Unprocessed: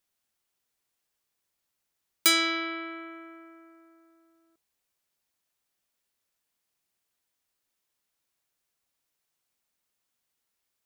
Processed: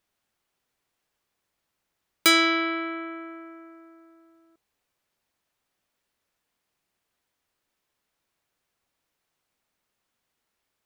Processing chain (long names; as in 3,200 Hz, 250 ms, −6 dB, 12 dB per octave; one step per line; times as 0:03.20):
high-shelf EQ 4,000 Hz −10.5 dB
level +7.5 dB